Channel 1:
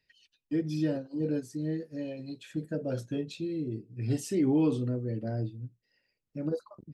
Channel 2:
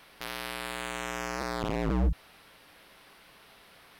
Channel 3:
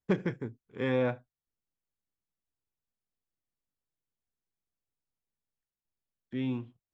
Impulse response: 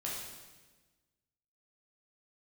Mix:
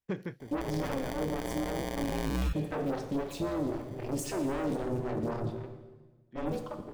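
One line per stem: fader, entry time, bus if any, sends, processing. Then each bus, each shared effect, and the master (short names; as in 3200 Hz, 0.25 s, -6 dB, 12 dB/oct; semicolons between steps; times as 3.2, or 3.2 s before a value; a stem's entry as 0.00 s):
-8.0 dB, 0.00 s, send -3.5 dB, sample leveller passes 5; AM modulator 270 Hz, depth 75%; photocell phaser 3.8 Hz
+1.0 dB, 0.40 s, no send, sample-and-hold 33×
-2.5 dB, 0.00 s, no send, auto duck -9 dB, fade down 0.60 s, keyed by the first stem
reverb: on, RT60 1.3 s, pre-delay 9 ms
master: limiter -23.5 dBFS, peak gain reduction 8.5 dB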